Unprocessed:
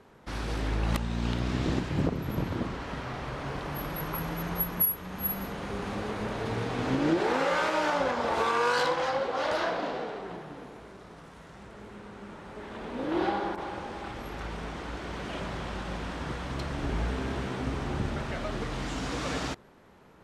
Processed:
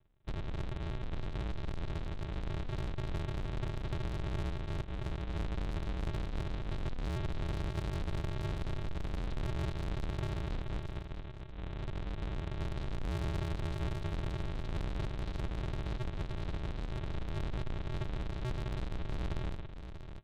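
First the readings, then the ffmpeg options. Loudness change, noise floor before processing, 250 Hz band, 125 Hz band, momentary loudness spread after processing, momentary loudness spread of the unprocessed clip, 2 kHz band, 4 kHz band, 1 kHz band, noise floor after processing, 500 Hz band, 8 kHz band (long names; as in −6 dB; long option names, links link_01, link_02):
−8.5 dB, −50 dBFS, −9.5 dB, −1.0 dB, 4 LU, 17 LU, −13.5 dB, −10.0 dB, −15.0 dB, −44 dBFS, −12.5 dB, −22.0 dB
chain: -filter_complex "[0:a]bandreject=frequency=1300:width=5.4,bandreject=frequency=80.27:width_type=h:width=4,bandreject=frequency=160.54:width_type=h:width=4,bandreject=frequency=240.81:width_type=h:width=4,agate=range=-27dB:threshold=-47dB:ratio=16:detection=peak,equalizer=frequency=240:width=0.44:gain=12,aecho=1:1:3.5:0.65,adynamicequalizer=threshold=0.00708:dfrequency=100:dqfactor=2.4:tfrequency=100:tqfactor=2.4:attack=5:release=100:ratio=0.375:range=3:mode=boostabove:tftype=bell,acompressor=threshold=-22dB:ratio=2.5,alimiter=limit=-23dB:level=0:latency=1:release=200,acrossover=split=220[link_01][link_02];[link_01]acompressor=threshold=-43dB:ratio=6[link_03];[link_03][link_02]amix=inputs=2:normalize=0,aresample=8000,acrusher=samples=32:mix=1:aa=0.000001,aresample=44100,asoftclip=type=tanh:threshold=-37dB,aecho=1:1:640:0.355,volume=4dB"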